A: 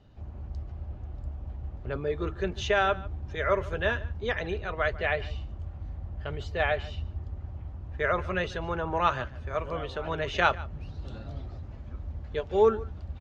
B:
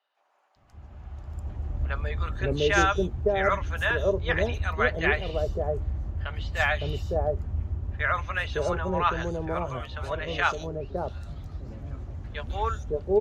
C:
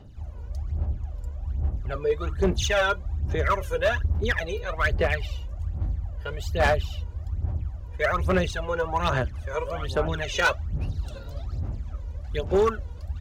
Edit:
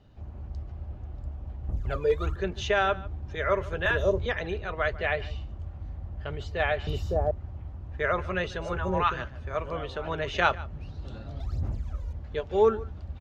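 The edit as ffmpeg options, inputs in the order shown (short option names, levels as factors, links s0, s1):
-filter_complex "[2:a]asplit=2[s0][s1];[1:a]asplit=3[s2][s3][s4];[0:a]asplit=6[s5][s6][s7][s8][s9][s10];[s5]atrim=end=1.692[s11];[s0]atrim=start=1.688:end=2.362[s12];[s6]atrim=start=2.358:end=3.862[s13];[s2]atrim=start=3.858:end=4.262[s14];[s7]atrim=start=4.258:end=6.872[s15];[s3]atrim=start=6.868:end=7.312[s16];[s8]atrim=start=7.308:end=8.82[s17];[s4]atrim=start=8.58:end=9.27[s18];[s9]atrim=start=9.03:end=11.402[s19];[s1]atrim=start=11.398:end=12.132[s20];[s10]atrim=start=12.128[s21];[s11][s12]acrossfade=d=0.004:c1=hsin:c2=hsin[s22];[s22][s13]acrossfade=d=0.004:c1=hsin:c2=hsin[s23];[s23][s14]acrossfade=d=0.004:c1=hsin:c2=hsin[s24];[s24][s15]acrossfade=d=0.004:c1=hsin:c2=hsin[s25];[s25][s16]acrossfade=d=0.004:c1=hsin:c2=hsin[s26];[s26][s17]acrossfade=d=0.004:c1=hsin:c2=hsin[s27];[s27][s18]acrossfade=d=0.24:c1=tri:c2=tri[s28];[s28][s19]acrossfade=d=0.24:c1=tri:c2=tri[s29];[s29][s20]acrossfade=d=0.004:c1=hsin:c2=hsin[s30];[s30][s21]acrossfade=d=0.004:c1=hsin:c2=hsin"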